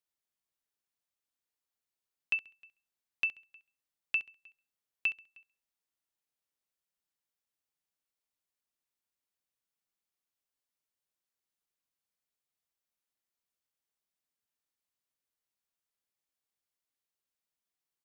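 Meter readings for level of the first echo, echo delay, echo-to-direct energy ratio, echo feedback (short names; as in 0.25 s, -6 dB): -15.0 dB, 67 ms, -14.5 dB, 27%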